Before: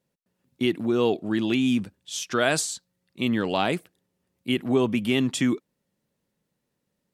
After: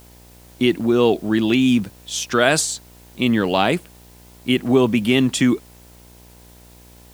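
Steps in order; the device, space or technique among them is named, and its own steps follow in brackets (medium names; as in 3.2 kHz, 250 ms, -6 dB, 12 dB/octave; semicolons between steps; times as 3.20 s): video cassette with head-switching buzz (mains buzz 60 Hz, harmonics 17, -54 dBFS -5 dB/octave; white noise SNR 31 dB); trim +6.5 dB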